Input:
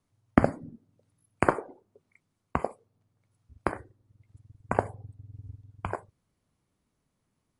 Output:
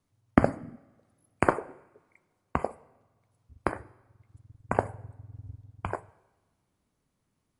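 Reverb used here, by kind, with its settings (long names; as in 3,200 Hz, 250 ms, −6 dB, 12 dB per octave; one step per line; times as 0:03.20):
coupled-rooms reverb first 1 s, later 2.5 s, from −18 dB, DRR 19 dB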